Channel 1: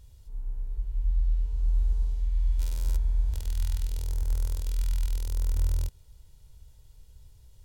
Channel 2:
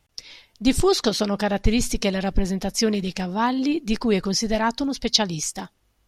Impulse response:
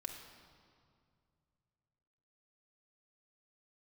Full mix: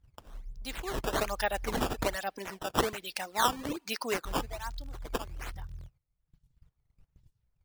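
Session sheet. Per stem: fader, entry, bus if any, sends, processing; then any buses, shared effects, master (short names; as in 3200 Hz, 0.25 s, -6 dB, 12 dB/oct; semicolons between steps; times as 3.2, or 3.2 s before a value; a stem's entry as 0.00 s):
-10.0 dB, 0.00 s, muted 2.16–4.25, send -14 dB, bell 150 Hz +14 dB 0.98 oct; compressor 10:1, threshold -26 dBFS, peak gain reduction 7.5 dB
0.88 s -12.5 dB -> 1.2 s -2 dB -> 4.24 s -2 dB -> 4.61 s -15 dB, 0.00 s, send -20 dB, Bessel high-pass 790 Hz, order 2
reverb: on, RT60 2.3 s, pre-delay 3 ms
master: reverb removal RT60 1.1 s; gate -57 dBFS, range -13 dB; decimation with a swept rate 12×, swing 160% 1.2 Hz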